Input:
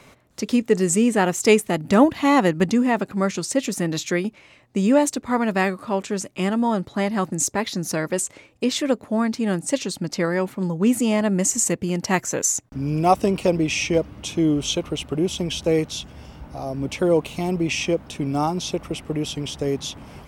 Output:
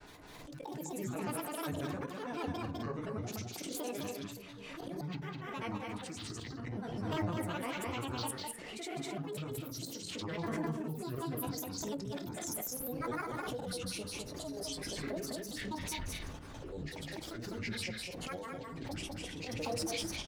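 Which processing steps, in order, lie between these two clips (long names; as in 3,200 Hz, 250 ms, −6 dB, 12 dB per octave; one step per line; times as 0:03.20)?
mains-hum notches 60/120/180/240/300/360/420 Hz
reversed playback
downward compressor 10 to 1, threshold −32 dBFS, peak gain reduction 22 dB
reversed playback
multi-voice chorus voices 6, 0.58 Hz, delay 20 ms, depth 3.5 ms
square-wave tremolo 2.4 Hz, depth 65%, duty 85%
volume swells 224 ms
granular cloud, pitch spread up and down by 12 semitones
on a send: multi-tap delay 203/254 ms −3/−11.5 dB
on the sum: feedback delay network reverb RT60 0.41 s, low-frequency decay 1.05×, high-frequency decay 0.45×, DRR 12 dB
background raised ahead of every attack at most 24 dB per second
level −1 dB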